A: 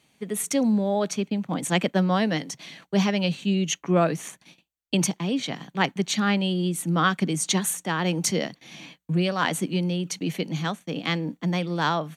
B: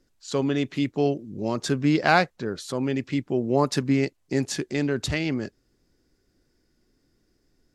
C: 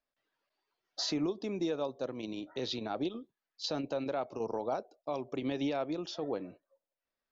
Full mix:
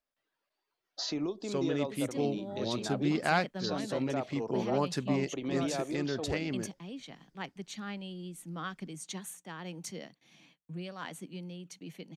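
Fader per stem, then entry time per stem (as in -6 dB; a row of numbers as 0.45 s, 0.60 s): -17.5 dB, -9.0 dB, -1.5 dB; 1.60 s, 1.20 s, 0.00 s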